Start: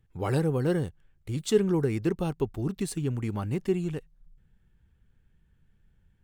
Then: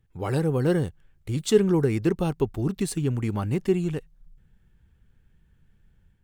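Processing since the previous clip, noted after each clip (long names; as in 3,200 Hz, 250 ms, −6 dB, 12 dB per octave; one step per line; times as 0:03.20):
automatic gain control gain up to 4 dB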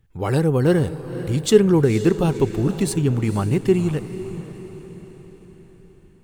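feedback delay with all-pass diffusion 504 ms, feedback 50%, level −12.5 dB
level +5.5 dB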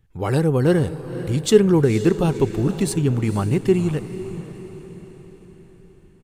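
downsampling to 32,000 Hz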